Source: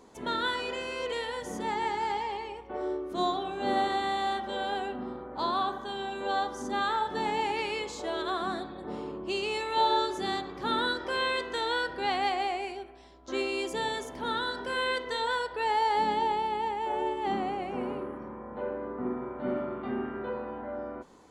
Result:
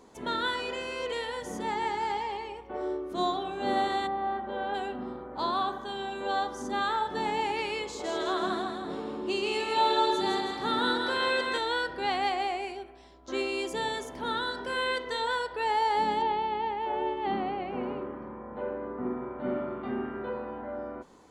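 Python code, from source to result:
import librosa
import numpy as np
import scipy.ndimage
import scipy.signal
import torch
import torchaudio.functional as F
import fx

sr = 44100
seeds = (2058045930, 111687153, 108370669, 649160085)

y = fx.lowpass(x, sr, hz=fx.line((4.06, 1000.0), (4.73, 2300.0)), slope=12, at=(4.06, 4.73), fade=0.02)
y = fx.echo_split(y, sr, split_hz=480.0, low_ms=105, high_ms=162, feedback_pct=52, wet_db=-4.0, at=(7.84, 11.58))
y = fx.lowpass(y, sr, hz=4400.0, slope=24, at=(16.22, 19.67))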